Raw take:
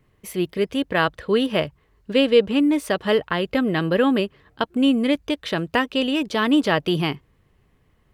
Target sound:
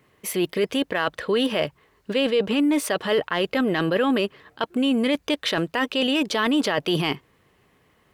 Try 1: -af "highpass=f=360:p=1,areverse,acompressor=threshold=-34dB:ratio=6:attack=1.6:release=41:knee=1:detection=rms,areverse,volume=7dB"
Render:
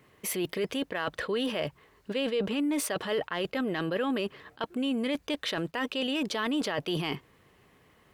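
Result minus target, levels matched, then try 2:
compressor: peak gain reduction +8.5 dB
-af "highpass=f=360:p=1,areverse,acompressor=threshold=-24dB:ratio=6:attack=1.6:release=41:knee=1:detection=rms,areverse,volume=7dB"

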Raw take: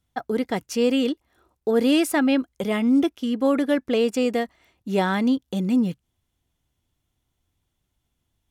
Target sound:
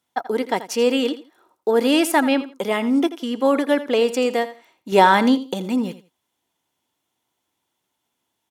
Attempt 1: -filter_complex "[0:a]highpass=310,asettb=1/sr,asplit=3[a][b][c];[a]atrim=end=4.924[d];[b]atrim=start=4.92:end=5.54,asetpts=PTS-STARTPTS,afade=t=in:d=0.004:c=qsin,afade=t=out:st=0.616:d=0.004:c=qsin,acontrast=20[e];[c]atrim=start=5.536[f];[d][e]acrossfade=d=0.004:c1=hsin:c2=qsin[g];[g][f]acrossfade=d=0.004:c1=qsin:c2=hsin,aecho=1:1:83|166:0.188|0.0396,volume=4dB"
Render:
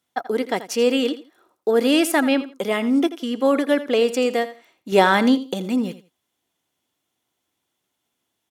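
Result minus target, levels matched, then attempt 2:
1000 Hz band -3.5 dB
-filter_complex "[0:a]highpass=310,equalizer=f=920:t=o:w=0.24:g=7.5,asettb=1/sr,asplit=3[a][b][c];[a]atrim=end=4.924[d];[b]atrim=start=4.92:end=5.54,asetpts=PTS-STARTPTS,afade=t=in:d=0.004:c=qsin,afade=t=out:st=0.616:d=0.004:c=qsin,acontrast=20[e];[c]atrim=start=5.536[f];[d][e]acrossfade=d=0.004:c1=hsin:c2=qsin[g];[g][f]acrossfade=d=0.004:c1=qsin:c2=hsin,aecho=1:1:83|166:0.188|0.0396,volume=4dB"

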